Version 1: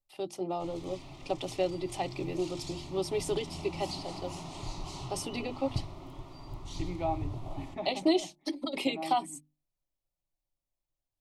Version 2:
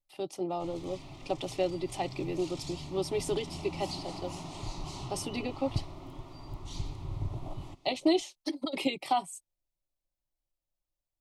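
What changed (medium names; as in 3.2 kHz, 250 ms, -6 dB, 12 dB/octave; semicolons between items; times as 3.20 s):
second voice: muted; master: remove hum notches 50/100/150/200/250/300/350 Hz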